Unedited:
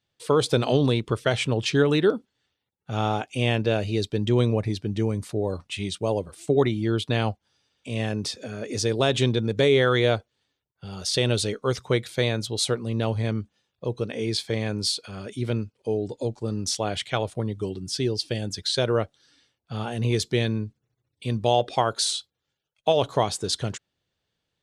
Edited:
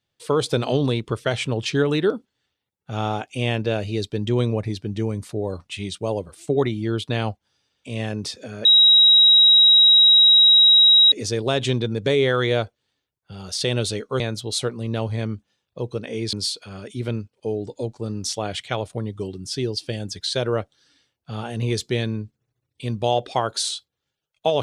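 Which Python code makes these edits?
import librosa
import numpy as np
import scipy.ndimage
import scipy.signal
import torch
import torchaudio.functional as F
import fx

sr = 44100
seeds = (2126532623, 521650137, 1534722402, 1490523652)

y = fx.edit(x, sr, fx.insert_tone(at_s=8.65, length_s=2.47, hz=3830.0, db=-9.5),
    fx.cut(start_s=11.73, length_s=0.53),
    fx.cut(start_s=14.39, length_s=0.36), tone=tone)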